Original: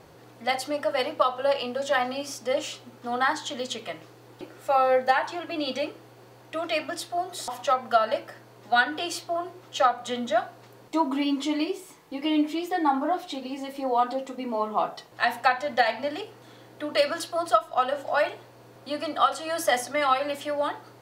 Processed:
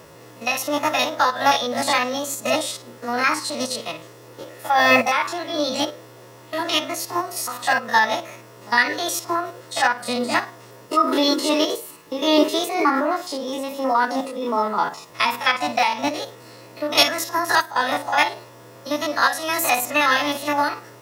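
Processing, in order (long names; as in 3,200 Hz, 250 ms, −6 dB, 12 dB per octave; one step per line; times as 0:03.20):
spectrum averaged block by block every 50 ms
high-shelf EQ 5,700 Hz +7 dB
notch comb filter 780 Hz
formants moved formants +4 semitones
level +8 dB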